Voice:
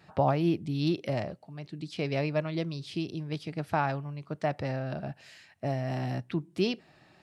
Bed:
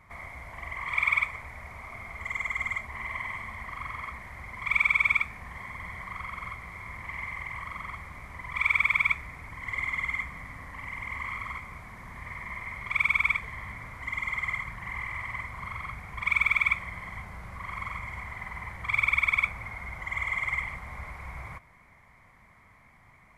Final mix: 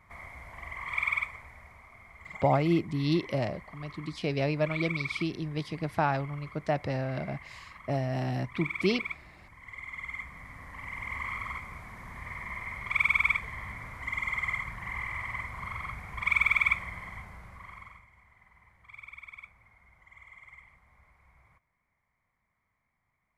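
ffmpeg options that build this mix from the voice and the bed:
-filter_complex "[0:a]adelay=2250,volume=1dB[a];[1:a]volume=7.5dB,afade=t=out:st=0.95:d=0.94:silence=0.398107,afade=t=in:st=9.83:d=1.33:silence=0.281838,afade=t=out:st=16.78:d=1.29:silence=0.0841395[b];[a][b]amix=inputs=2:normalize=0"

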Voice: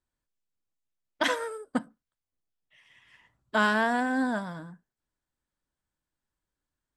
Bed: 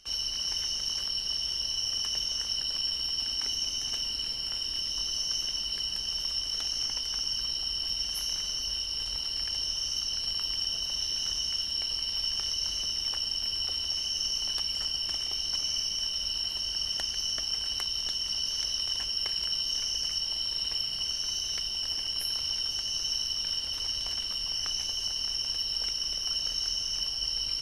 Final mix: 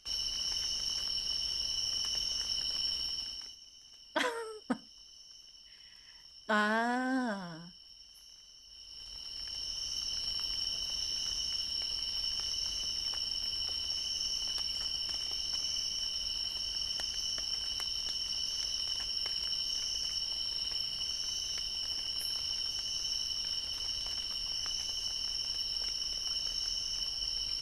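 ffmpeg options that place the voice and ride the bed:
-filter_complex "[0:a]adelay=2950,volume=-5.5dB[a];[1:a]volume=15dB,afade=t=out:st=2.96:d=0.61:silence=0.105925,afade=t=in:st=8.67:d=1.49:silence=0.11885[b];[a][b]amix=inputs=2:normalize=0"

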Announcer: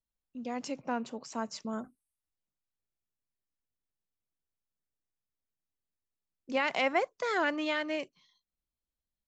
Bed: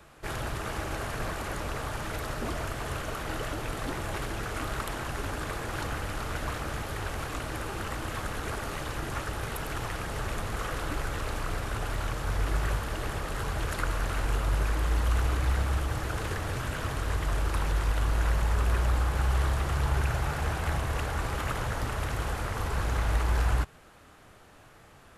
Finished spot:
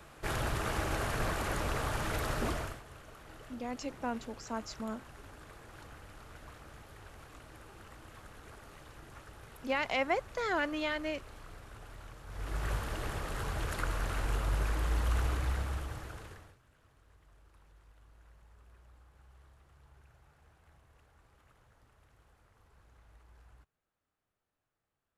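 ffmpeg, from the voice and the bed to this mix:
-filter_complex "[0:a]adelay=3150,volume=-2.5dB[a];[1:a]volume=13.5dB,afade=t=out:st=2.45:d=0.37:silence=0.125893,afade=t=in:st=12.28:d=0.48:silence=0.211349,afade=t=out:st=15.24:d=1.33:silence=0.0334965[b];[a][b]amix=inputs=2:normalize=0"

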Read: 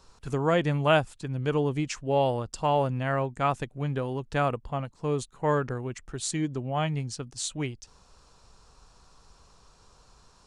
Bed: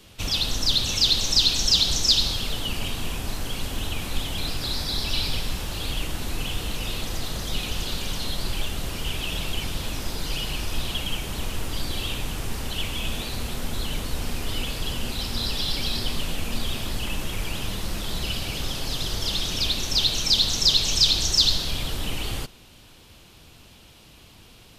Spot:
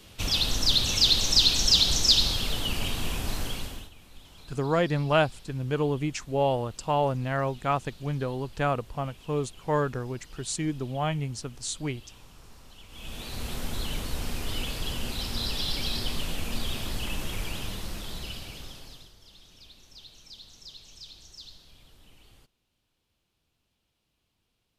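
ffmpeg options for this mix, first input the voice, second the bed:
-filter_complex "[0:a]adelay=4250,volume=-0.5dB[a];[1:a]volume=18dB,afade=t=out:st=3.41:d=0.49:silence=0.0841395,afade=t=in:st=12.88:d=0.65:silence=0.112202,afade=t=out:st=17.34:d=1.79:silence=0.0630957[b];[a][b]amix=inputs=2:normalize=0"

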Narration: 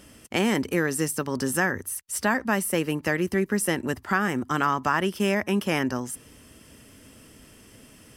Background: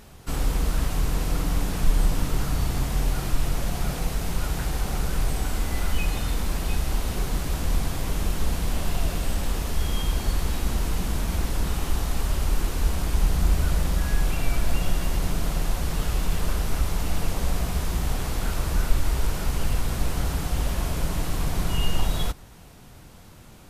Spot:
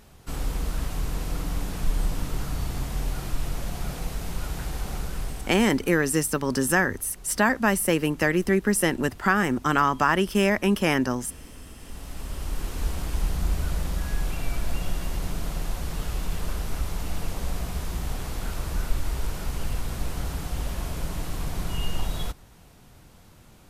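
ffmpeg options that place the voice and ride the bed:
-filter_complex "[0:a]adelay=5150,volume=2.5dB[a];[1:a]volume=11.5dB,afade=t=out:st=4.93:d=0.97:silence=0.158489,afade=t=in:st=11.78:d=1.05:silence=0.158489[b];[a][b]amix=inputs=2:normalize=0"

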